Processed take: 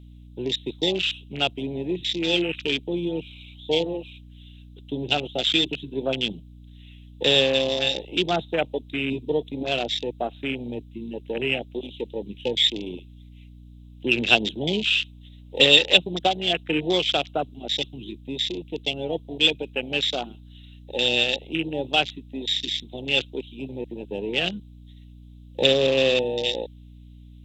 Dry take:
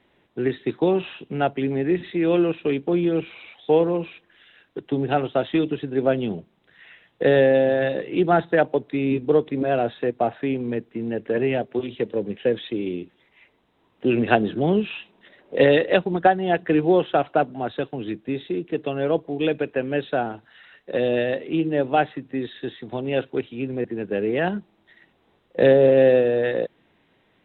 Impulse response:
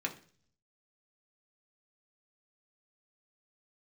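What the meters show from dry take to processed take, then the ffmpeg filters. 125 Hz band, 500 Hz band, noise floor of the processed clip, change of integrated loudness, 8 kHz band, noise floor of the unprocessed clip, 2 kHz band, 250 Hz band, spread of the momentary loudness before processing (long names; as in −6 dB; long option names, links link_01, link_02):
−5.5 dB, −6.0 dB, −46 dBFS, −1.0 dB, can't be measured, −64 dBFS, +3.0 dB, −6.0 dB, 13 LU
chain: -af "aexciter=amount=12:drive=9.7:freq=2800,afwtdn=0.1,aeval=exprs='val(0)+0.0126*(sin(2*PI*60*n/s)+sin(2*PI*2*60*n/s)/2+sin(2*PI*3*60*n/s)/3+sin(2*PI*4*60*n/s)/4+sin(2*PI*5*60*n/s)/5)':channel_layout=same,volume=-6dB"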